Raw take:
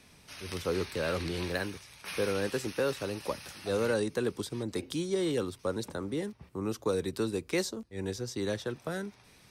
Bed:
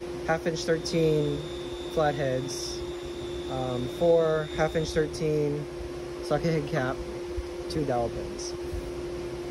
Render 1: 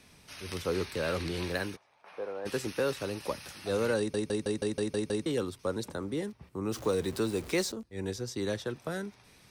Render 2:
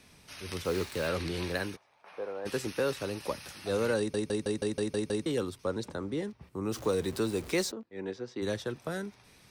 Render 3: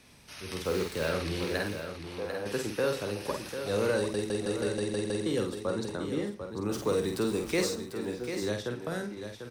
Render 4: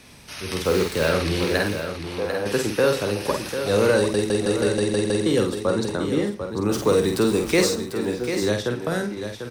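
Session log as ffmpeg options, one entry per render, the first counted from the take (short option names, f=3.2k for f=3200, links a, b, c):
-filter_complex "[0:a]asplit=3[a][b][c];[a]afade=t=out:st=1.75:d=0.02[d];[b]bandpass=f=730:t=q:w=2.1,afade=t=in:st=1.75:d=0.02,afade=t=out:st=2.45:d=0.02[e];[c]afade=t=in:st=2.45:d=0.02[f];[d][e][f]amix=inputs=3:normalize=0,asettb=1/sr,asplit=3[g][h][i];[g]atrim=end=6.724[j];[h]atrim=start=6.72:end=7.72,asetpts=PTS-STARTPTS,afade=t=in:d=0.004:c=qsin,afade=t=out:st=0.996:d=0.004:c=qsin,aeval=exprs='val(0)+0.5*0.00944*sgn(val(0))':c=same[k];[i]atrim=start=7.716[l];[j][k]acrossfade=d=0.004:c1=hsin:c2=qsin[m];[m][l]acrossfade=d=0.004:c1=qsin:c2=hsin,asplit=9[n][o][p][q][r][s][t][u][v];[n]atrim=end=4.142[w];[o]atrim=start=3.978:end=4.142[x];[p]atrim=start=3.978:end=4.142[y];[q]atrim=start=3.978:end=4.142[z];[r]atrim=start=3.978:end=4.142[aa];[s]atrim=start=3.978:end=4.142[ab];[t]atrim=start=3.978:end=4.142[ac];[u]atrim=start=3.978:end=4.142[ad];[v]atrim=start=5.258[ae];[w][x]acrossfade=d=0.004:c1=hsin:c2=hsin[af];[af][y]acrossfade=d=0.004:c1=hsin:c2=hsin[ag];[ag][z]acrossfade=d=0.004:c1=hsin:c2=hsin[ah];[ah][aa]acrossfade=d=0.004:c1=hsin:c2=hsin[ai];[ai][ab]acrossfade=d=0.004:c1=hsin:c2=hsin[aj];[aj][ac]acrossfade=d=0.004:c1=hsin:c2=hsin[ak];[ak][ad]acrossfade=d=0.004:c1=hsin:c2=hsin[al];[al][ae]acrossfade=d=0.004:c1=hsin:c2=hsin"
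-filter_complex "[0:a]asplit=3[a][b][c];[a]afade=t=out:st=0.64:d=0.02[d];[b]acrusher=bits=6:mix=0:aa=0.5,afade=t=in:st=0.64:d=0.02,afade=t=out:st=1.07:d=0.02[e];[c]afade=t=in:st=1.07:d=0.02[f];[d][e][f]amix=inputs=3:normalize=0,asettb=1/sr,asplit=3[g][h][i];[g]atrim=end=5.644[j];[h]atrim=start=5.64:end=6.41,asetpts=PTS-STARTPTS,afade=t=in:d=0.004:c=qsin,afade=t=out:st=0.766:d=0.004:c=qsin,equalizer=f=13k:w=0.76:g=-11[k];[i]atrim=start=6.406[l];[j][k]acrossfade=d=0.004:c1=hsin:c2=qsin[m];[m][l]acrossfade=d=0.004:c1=qsin:c2=hsin,asplit=3[n][o][p];[n]afade=t=out:st=7.7:d=0.02[q];[o]highpass=220,lowpass=2.7k,afade=t=in:st=7.7:d=0.02,afade=t=out:st=8.41:d=0.02[r];[p]afade=t=in:st=8.41:d=0.02[s];[q][r][s]amix=inputs=3:normalize=0"
-filter_complex "[0:a]asplit=2[a][b];[b]adelay=49,volume=-5dB[c];[a][c]amix=inputs=2:normalize=0,asplit=2[d][e];[e]aecho=0:1:118|745:0.112|0.376[f];[d][f]amix=inputs=2:normalize=0"
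-af "volume=9.5dB"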